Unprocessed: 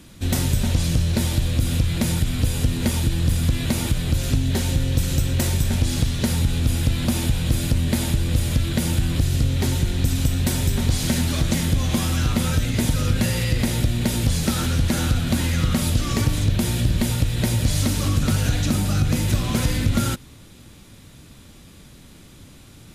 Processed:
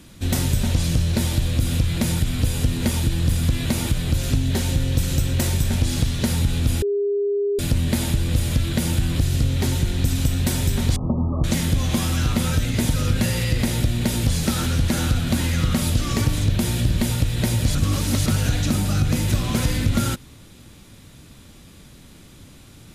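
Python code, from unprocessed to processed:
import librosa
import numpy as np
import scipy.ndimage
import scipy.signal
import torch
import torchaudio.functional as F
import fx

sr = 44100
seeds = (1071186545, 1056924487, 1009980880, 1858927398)

y = fx.brickwall_lowpass(x, sr, high_hz=1300.0, at=(10.96, 11.44))
y = fx.edit(y, sr, fx.bleep(start_s=6.82, length_s=0.77, hz=405.0, db=-18.5),
    fx.reverse_span(start_s=17.75, length_s=0.51), tone=tone)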